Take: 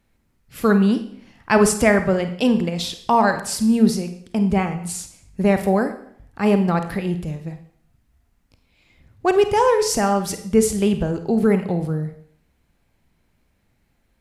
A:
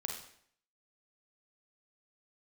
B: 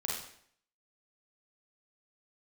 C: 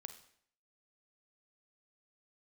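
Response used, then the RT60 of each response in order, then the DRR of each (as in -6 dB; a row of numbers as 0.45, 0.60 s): C; 0.65, 0.65, 0.65 s; 1.0, -4.0, 8.0 dB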